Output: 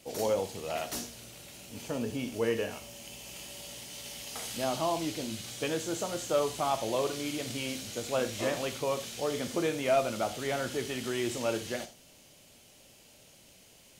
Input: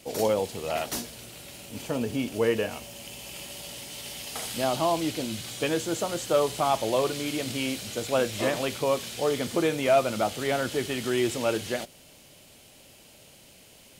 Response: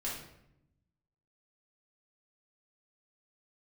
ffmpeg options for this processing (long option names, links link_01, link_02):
-filter_complex "[0:a]asplit=2[link_01][link_02];[link_02]equalizer=frequency=6200:width=1.9:gain=13.5[link_03];[1:a]atrim=start_sample=2205,atrim=end_sample=3969,adelay=17[link_04];[link_03][link_04]afir=irnorm=-1:irlink=0,volume=-11.5dB[link_05];[link_01][link_05]amix=inputs=2:normalize=0,volume=-5.5dB"